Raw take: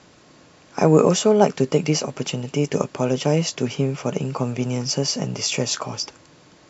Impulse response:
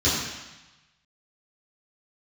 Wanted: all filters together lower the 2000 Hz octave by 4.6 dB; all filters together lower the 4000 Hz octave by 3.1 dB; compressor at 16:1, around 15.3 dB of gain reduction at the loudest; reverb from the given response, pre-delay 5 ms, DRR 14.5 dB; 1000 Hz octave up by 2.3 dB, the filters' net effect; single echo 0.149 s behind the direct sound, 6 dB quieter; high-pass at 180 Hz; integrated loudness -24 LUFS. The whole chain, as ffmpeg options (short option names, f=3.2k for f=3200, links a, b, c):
-filter_complex "[0:a]highpass=180,equalizer=f=1k:t=o:g=4.5,equalizer=f=2k:t=o:g=-6.5,equalizer=f=4k:t=o:g=-3,acompressor=threshold=-25dB:ratio=16,aecho=1:1:149:0.501,asplit=2[a][b];[1:a]atrim=start_sample=2205,adelay=5[c];[b][c]afir=irnorm=-1:irlink=0,volume=-30dB[d];[a][d]amix=inputs=2:normalize=0,volume=6dB"